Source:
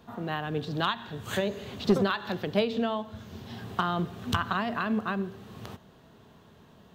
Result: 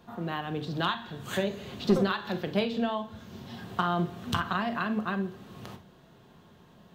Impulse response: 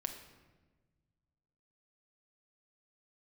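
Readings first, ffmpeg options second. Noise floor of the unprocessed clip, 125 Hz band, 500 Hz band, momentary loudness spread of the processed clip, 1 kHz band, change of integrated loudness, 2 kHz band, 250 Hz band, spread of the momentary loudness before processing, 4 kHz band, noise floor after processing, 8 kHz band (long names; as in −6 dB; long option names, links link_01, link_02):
−56 dBFS, 0.0 dB, −1.5 dB, 17 LU, −0.5 dB, −0.5 dB, −1.0 dB, 0.0 dB, 16 LU, −1.0 dB, −57 dBFS, −1.0 dB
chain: -filter_complex "[1:a]atrim=start_sample=2205,atrim=end_sample=3087[link_01];[0:a][link_01]afir=irnorm=-1:irlink=0"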